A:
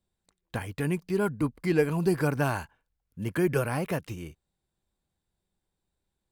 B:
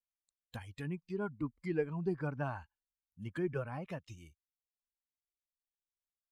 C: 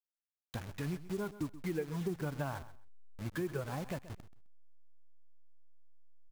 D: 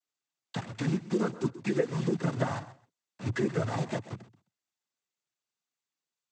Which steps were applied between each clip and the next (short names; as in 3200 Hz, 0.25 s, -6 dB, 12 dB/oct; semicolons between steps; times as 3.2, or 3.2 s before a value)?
per-bin expansion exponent 1.5; treble ducked by the level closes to 1800 Hz, closed at -27.5 dBFS; high shelf 5700 Hz +11.5 dB; gain -8.5 dB
level-crossing sampler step -44.5 dBFS; compressor 4:1, threshold -39 dBFS, peak gain reduction 10 dB; feedback echo 0.13 s, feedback 19%, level -15.5 dB; gain +5 dB
noise vocoder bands 16; gain +8 dB